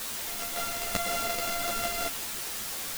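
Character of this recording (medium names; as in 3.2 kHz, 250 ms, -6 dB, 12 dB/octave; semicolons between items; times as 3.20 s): a buzz of ramps at a fixed pitch in blocks of 64 samples; random-step tremolo; a quantiser's noise floor 6-bit, dither triangular; a shimmering, thickened sound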